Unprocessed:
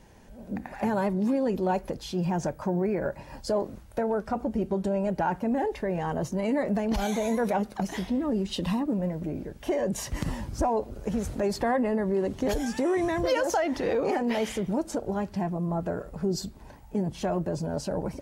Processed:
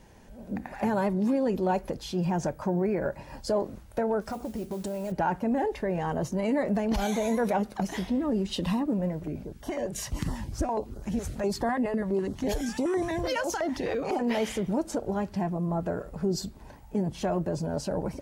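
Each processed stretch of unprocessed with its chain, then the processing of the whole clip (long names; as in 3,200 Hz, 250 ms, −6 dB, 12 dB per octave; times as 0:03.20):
0:04.21–0:05.12: bass and treble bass −2 dB, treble +9 dB + downward compressor 3 to 1, threshold −31 dBFS + noise that follows the level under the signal 22 dB
0:09.19–0:14.20: parametric band 510 Hz −4 dB 0.33 octaves + notch on a step sequencer 12 Hz 230–2,500 Hz
whole clip: no processing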